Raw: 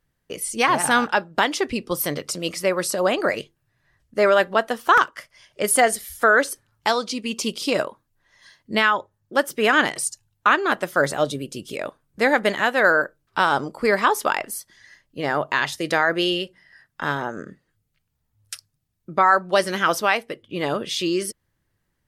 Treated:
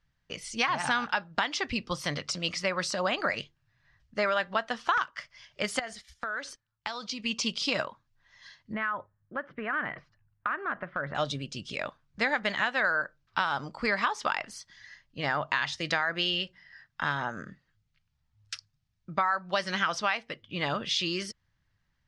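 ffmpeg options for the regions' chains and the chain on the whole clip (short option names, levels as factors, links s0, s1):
-filter_complex "[0:a]asettb=1/sr,asplit=3[s0][s1][s2];[s0]atrim=end=5.794[s3];[s1]atrim=start=5.79:end=7.2,asetpts=PTS-STARTPTS,afade=t=in:d=0.004:c=qsin,afade=t=out:st=1.406:d=0.004:c=qsin,agate=range=0.141:threshold=0.0141:ratio=16:release=100:detection=peak,acompressor=threshold=0.0398:ratio=8:attack=3.2:release=140:knee=1:detection=peak[s4];[s2]atrim=start=7.196[s5];[s3][s4]acrossfade=d=0.004:c1=hsin:c2=qsin[s6];[s6][s5]acrossfade=d=0.004:c1=qsin:c2=hsin,asettb=1/sr,asplit=3[s7][s8][s9];[s7]atrim=end=8.724[s10];[s8]atrim=start=8.72:end=11.15,asetpts=PTS-STARTPTS,afade=t=in:d=0.004:c=qsin,afade=t=out:st=2.426:d=0.004:c=qsin,lowpass=f=1900:w=0.5412,lowpass=f=1900:w=1.3066,equalizer=f=860:t=o:w=0.28:g=-6.5,acompressor=threshold=0.0631:ratio=5:attack=3.2:release=140:knee=1:detection=peak[s11];[s9]atrim=start=11.146[s12];[s10][s11]acrossfade=d=0.004:c1=hsin:c2=qsin[s13];[s13][s12]acrossfade=d=0.004:c1=qsin:c2=hsin,lowpass=f=5900:w=0.5412,lowpass=f=5900:w=1.3066,equalizer=f=390:w=1:g=-13,acompressor=threshold=0.0631:ratio=5"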